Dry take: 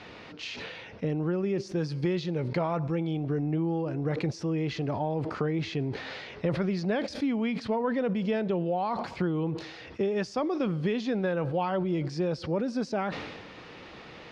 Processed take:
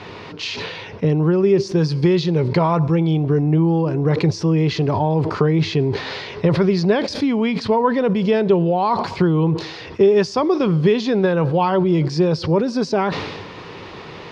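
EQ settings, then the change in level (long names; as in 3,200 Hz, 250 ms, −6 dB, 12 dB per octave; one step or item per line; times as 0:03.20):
dynamic equaliser 4,600 Hz, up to +6 dB, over −55 dBFS, Q 1.2
thirty-one-band graphic EQ 100 Hz +10 dB, 160 Hz +6 dB, 400 Hz +8 dB, 1,000 Hz +8 dB
+8.0 dB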